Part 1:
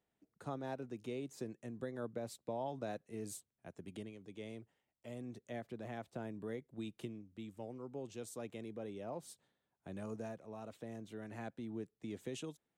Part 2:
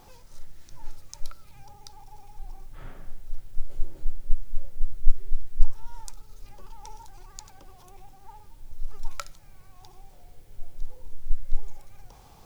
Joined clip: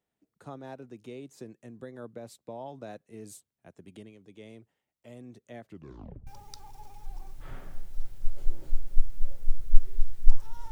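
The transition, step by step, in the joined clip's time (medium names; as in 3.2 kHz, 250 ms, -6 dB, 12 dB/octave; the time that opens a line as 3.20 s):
part 1
5.64 s: tape stop 0.63 s
6.27 s: go over to part 2 from 1.60 s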